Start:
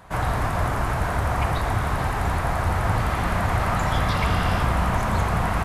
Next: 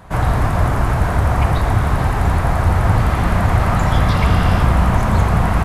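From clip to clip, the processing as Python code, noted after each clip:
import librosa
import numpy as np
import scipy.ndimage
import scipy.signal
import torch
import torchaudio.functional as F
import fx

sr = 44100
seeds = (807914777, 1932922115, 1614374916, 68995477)

y = fx.low_shelf(x, sr, hz=430.0, db=6.5)
y = y * 10.0 ** (3.0 / 20.0)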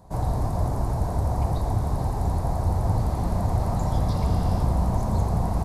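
y = fx.band_shelf(x, sr, hz=2000.0, db=-15.0, octaves=1.7)
y = y * 10.0 ** (-8.5 / 20.0)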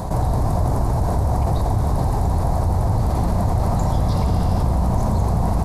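y = fx.env_flatten(x, sr, amount_pct=70)
y = y * 10.0 ** (2.0 / 20.0)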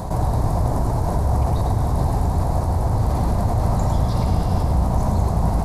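y = x + 10.0 ** (-6.0 / 20.0) * np.pad(x, (int(104 * sr / 1000.0), 0))[:len(x)]
y = y * 10.0 ** (-1.5 / 20.0)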